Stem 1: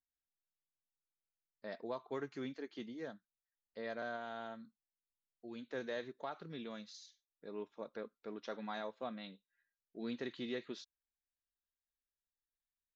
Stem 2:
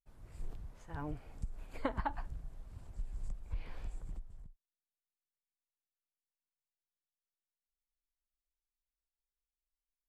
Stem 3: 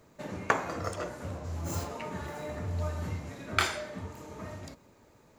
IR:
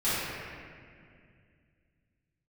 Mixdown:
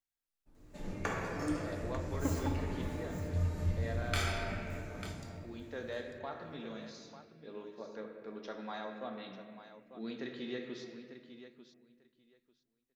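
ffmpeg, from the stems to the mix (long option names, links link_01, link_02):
-filter_complex "[0:a]volume=-2dB,asplit=3[link_01][link_02][link_03];[link_02]volume=-14dB[link_04];[link_03]volume=-10.5dB[link_05];[1:a]equalizer=frequency=290:width_type=o:width=0.77:gain=14.5,adelay=400,volume=-10dB,asplit=2[link_06][link_07];[link_07]volume=-12.5dB[link_08];[2:a]equalizer=frequency=1100:width=0.69:gain=-7,adelay=550,volume=-9.5dB,asplit=3[link_09][link_10][link_11];[link_10]volume=-7dB[link_12];[link_11]volume=-8.5dB[link_13];[3:a]atrim=start_sample=2205[link_14];[link_04][link_08][link_12]amix=inputs=3:normalize=0[link_15];[link_15][link_14]afir=irnorm=-1:irlink=0[link_16];[link_05][link_13]amix=inputs=2:normalize=0,aecho=0:1:895|1790|2685:1|0.17|0.0289[link_17];[link_01][link_06][link_09][link_16][link_17]amix=inputs=5:normalize=0"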